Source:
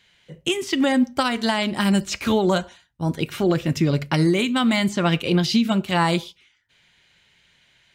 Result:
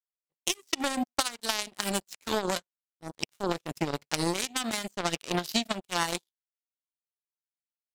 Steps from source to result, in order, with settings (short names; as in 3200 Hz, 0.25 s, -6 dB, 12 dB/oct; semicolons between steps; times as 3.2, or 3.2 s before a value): power-law curve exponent 3; tone controls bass -5 dB, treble +9 dB